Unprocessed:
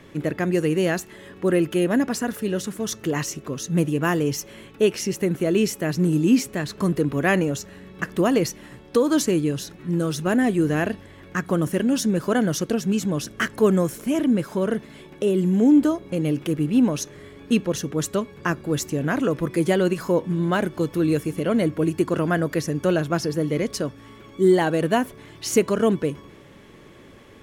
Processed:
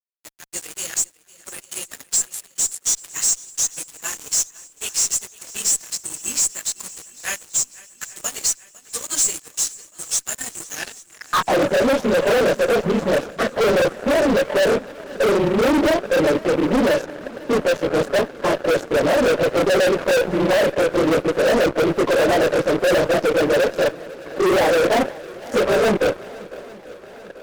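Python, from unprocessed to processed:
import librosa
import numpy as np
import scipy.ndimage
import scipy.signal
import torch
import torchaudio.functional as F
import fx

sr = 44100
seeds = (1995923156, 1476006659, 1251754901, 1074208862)

p1 = fx.phase_scramble(x, sr, seeds[0], window_ms=50)
p2 = fx.filter_sweep_bandpass(p1, sr, from_hz=7600.0, to_hz=560.0, start_s=10.68, end_s=11.61, q=6.4)
p3 = fx.fuzz(p2, sr, gain_db=44.0, gate_db=-52.0)
p4 = p3 + fx.echo_swing(p3, sr, ms=838, ratio=1.5, feedback_pct=58, wet_db=-21.0, dry=0)
y = F.gain(torch.from_numpy(p4), -1.5).numpy()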